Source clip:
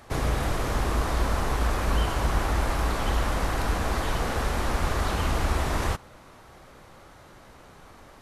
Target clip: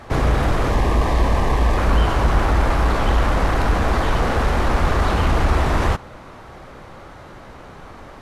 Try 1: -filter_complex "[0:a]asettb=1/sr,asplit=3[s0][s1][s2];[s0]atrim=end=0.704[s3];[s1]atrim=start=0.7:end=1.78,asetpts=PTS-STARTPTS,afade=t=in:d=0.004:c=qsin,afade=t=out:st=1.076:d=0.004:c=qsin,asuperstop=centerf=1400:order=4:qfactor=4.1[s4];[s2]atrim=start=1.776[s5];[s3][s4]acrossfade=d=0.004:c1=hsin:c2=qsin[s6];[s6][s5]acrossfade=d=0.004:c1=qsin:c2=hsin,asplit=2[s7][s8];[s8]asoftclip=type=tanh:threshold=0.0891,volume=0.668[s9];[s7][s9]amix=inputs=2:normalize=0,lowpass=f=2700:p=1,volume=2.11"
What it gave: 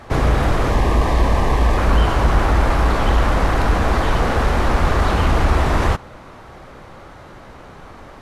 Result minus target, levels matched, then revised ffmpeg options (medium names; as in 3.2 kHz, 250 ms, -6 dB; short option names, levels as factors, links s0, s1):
saturation: distortion -8 dB
-filter_complex "[0:a]asettb=1/sr,asplit=3[s0][s1][s2];[s0]atrim=end=0.704[s3];[s1]atrim=start=0.7:end=1.78,asetpts=PTS-STARTPTS,afade=t=in:d=0.004:c=qsin,afade=t=out:st=1.076:d=0.004:c=qsin,asuperstop=centerf=1400:order=4:qfactor=4.1[s4];[s2]atrim=start=1.776[s5];[s3][s4]acrossfade=d=0.004:c1=hsin:c2=qsin[s6];[s6][s5]acrossfade=d=0.004:c1=qsin:c2=hsin,asplit=2[s7][s8];[s8]asoftclip=type=tanh:threshold=0.0316,volume=0.668[s9];[s7][s9]amix=inputs=2:normalize=0,lowpass=f=2700:p=1,volume=2.11"